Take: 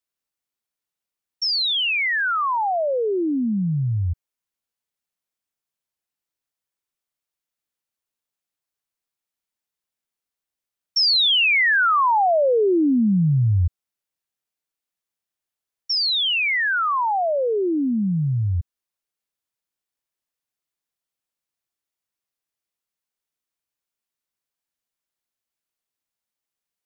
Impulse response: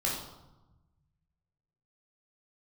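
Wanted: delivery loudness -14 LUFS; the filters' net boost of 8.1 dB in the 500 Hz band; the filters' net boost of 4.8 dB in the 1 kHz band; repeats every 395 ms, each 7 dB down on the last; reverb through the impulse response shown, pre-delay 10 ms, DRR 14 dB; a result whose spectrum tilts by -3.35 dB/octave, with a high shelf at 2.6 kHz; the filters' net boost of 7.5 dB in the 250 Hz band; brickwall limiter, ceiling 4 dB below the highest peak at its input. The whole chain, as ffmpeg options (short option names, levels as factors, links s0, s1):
-filter_complex "[0:a]equalizer=f=250:t=o:g=7.5,equalizer=f=500:t=o:g=7,equalizer=f=1000:t=o:g=3,highshelf=f=2600:g=3,alimiter=limit=0.335:level=0:latency=1,aecho=1:1:395|790|1185|1580|1975:0.447|0.201|0.0905|0.0407|0.0183,asplit=2[s0][s1];[1:a]atrim=start_sample=2205,adelay=10[s2];[s1][s2]afir=irnorm=-1:irlink=0,volume=0.0944[s3];[s0][s3]amix=inputs=2:normalize=0,volume=1.06"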